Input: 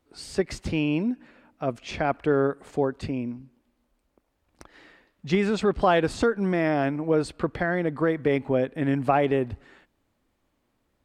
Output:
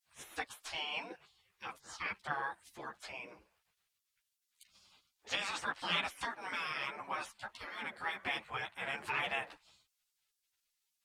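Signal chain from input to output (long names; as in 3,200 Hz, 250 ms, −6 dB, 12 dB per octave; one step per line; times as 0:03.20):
high-pass filter 290 Hz 6 dB per octave
gate on every frequency bin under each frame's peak −20 dB weak
string-ensemble chorus
level +5.5 dB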